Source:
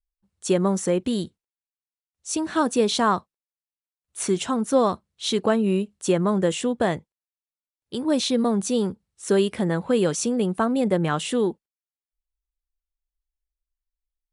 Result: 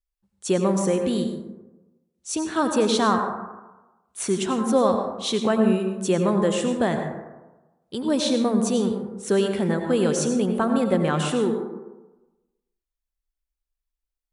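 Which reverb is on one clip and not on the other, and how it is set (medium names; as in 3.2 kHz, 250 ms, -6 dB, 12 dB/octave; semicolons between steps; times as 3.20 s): plate-style reverb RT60 1.1 s, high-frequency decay 0.35×, pre-delay 75 ms, DRR 4.5 dB; trim -1 dB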